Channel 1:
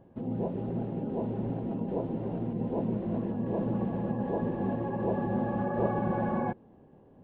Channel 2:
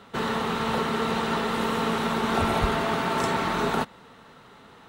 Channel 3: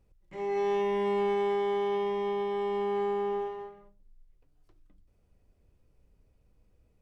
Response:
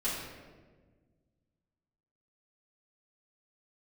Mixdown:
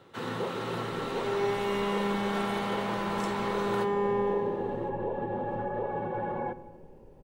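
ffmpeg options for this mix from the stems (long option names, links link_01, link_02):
-filter_complex "[0:a]highpass=130,aecho=1:1:2.2:0.56,acontrast=87,volume=-6.5dB,asplit=2[link_01][link_02];[link_02]volume=-21.5dB[link_03];[1:a]highpass=680,volume=-10dB,asplit=2[link_04][link_05];[link_05]volume=-13.5dB[link_06];[2:a]adelay=850,volume=0dB,asplit=2[link_07][link_08];[link_08]volume=-5.5dB[link_09];[link_01][link_07]amix=inputs=2:normalize=0,acrossover=split=420[link_10][link_11];[link_10]acompressor=threshold=-34dB:ratio=6[link_12];[link_12][link_11]amix=inputs=2:normalize=0,alimiter=limit=-23.5dB:level=0:latency=1:release=166,volume=0dB[link_13];[3:a]atrim=start_sample=2205[link_14];[link_03][link_06][link_09]amix=inputs=3:normalize=0[link_15];[link_15][link_14]afir=irnorm=-1:irlink=0[link_16];[link_04][link_13][link_16]amix=inputs=3:normalize=0"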